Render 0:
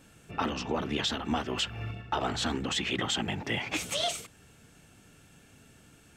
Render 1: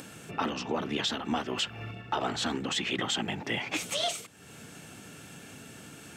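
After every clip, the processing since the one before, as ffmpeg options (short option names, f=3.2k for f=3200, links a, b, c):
-af "highpass=130,acompressor=mode=upward:threshold=-36dB:ratio=2.5"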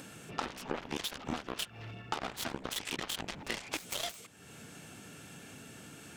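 -af "aeval=exprs='0.141*(cos(1*acos(clip(val(0)/0.141,-1,1)))-cos(1*PI/2))+0.0316*(cos(7*acos(clip(val(0)/0.141,-1,1)))-cos(7*PI/2))':c=same,acompressor=threshold=-35dB:ratio=6,volume=2.5dB"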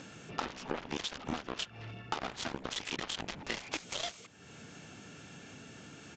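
-af "aresample=16000,aresample=44100"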